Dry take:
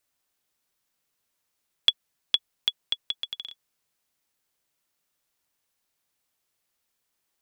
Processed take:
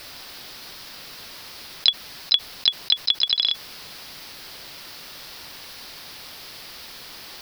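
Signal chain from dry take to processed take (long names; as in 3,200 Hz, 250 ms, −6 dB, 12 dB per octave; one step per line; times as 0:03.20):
pitch-shifted copies added +3 semitones −12 dB, +7 semitones −17 dB
high shelf with overshoot 5,900 Hz −6.5 dB, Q 3
envelope flattener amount 70%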